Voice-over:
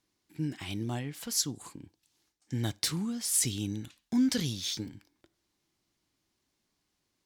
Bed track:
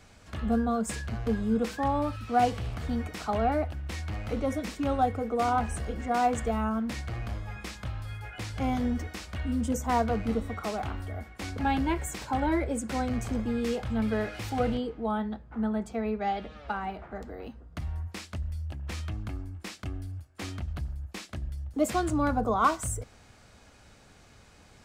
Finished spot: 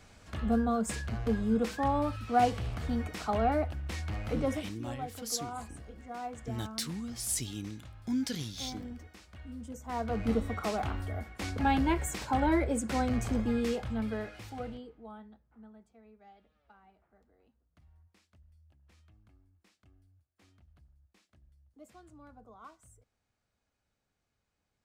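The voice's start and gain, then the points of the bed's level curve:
3.95 s, -5.5 dB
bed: 4.53 s -1.5 dB
4.80 s -14.5 dB
9.80 s -14.5 dB
10.28 s 0 dB
13.54 s 0 dB
15.97 s -27.5 dB

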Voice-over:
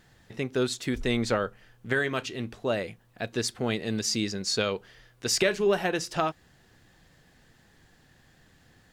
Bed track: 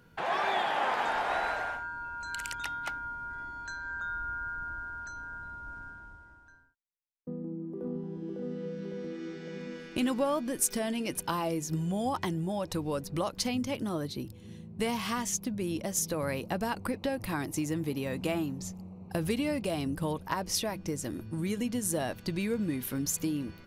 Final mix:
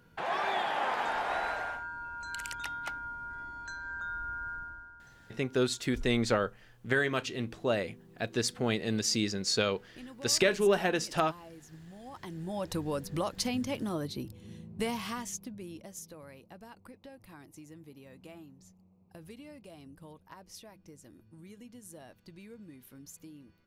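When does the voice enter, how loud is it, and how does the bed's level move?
5.00 s, -1.5 dB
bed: 4.55 s -2 dB
5.16 s -18.5 dB
12.00 s -18.5 dB
12.63 s -1 dB
14.77 s -1 dB
16.33 s -18.5 dB

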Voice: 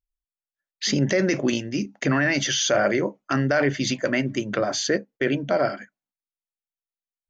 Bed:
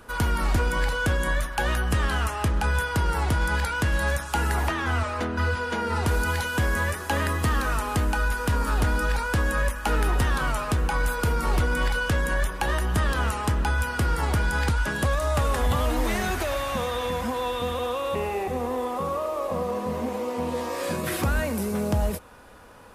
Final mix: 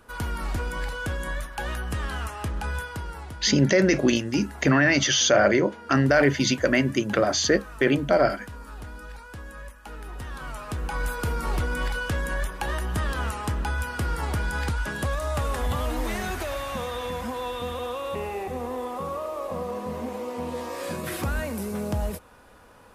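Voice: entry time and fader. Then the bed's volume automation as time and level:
2.60 s, +2.0 dB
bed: 2.76 s -6 dB
3.40 s -16.5 dB
10.01 s -16.5 dB
11.04 s -3.5 dB

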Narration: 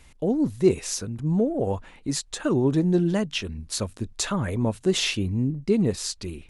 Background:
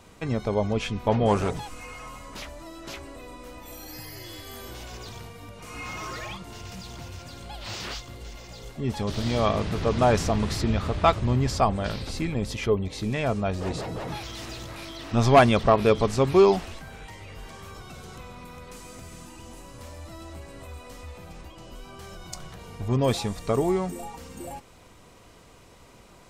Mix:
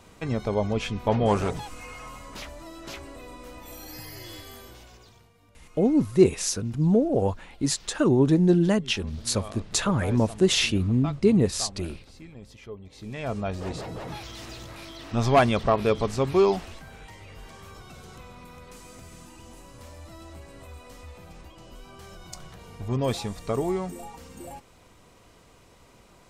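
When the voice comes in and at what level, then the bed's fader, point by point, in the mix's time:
5.55 s, +2.0 dB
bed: 4.36 s -0.5 dB
5.29 s -17 dB
12.78 s -17 dB
13.36 s -3 dB

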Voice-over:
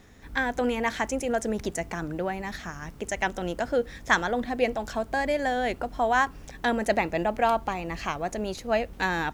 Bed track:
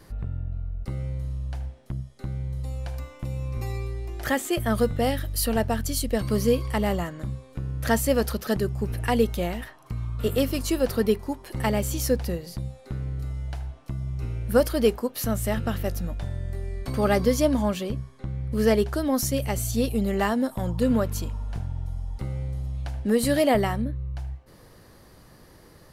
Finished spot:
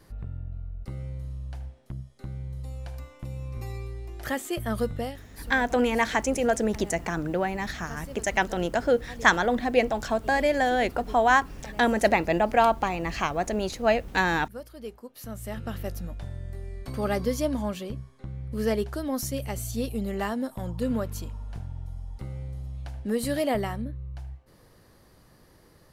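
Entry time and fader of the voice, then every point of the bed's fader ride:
5.15 s, +3.0 dB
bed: 4.98 s -5 dB
5.25 s -20.5 dB
14.70 s -20.5 dB
15.79 s -5.5 dB

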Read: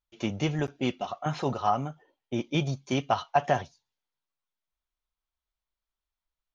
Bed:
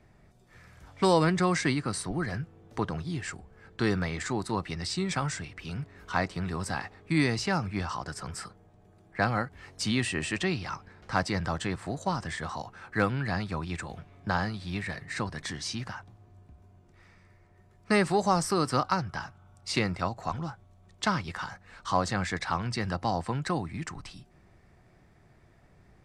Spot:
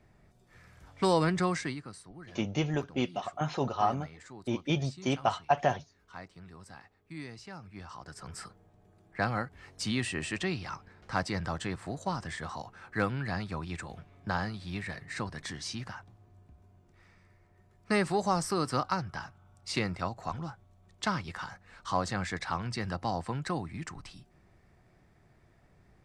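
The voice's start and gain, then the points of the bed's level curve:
2.15 s, -2.0 dB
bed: 1.46 s -3 dB
2.03 s -17.5 dB
7.57 s -17.5 dB
8.44 s -3.5 dB

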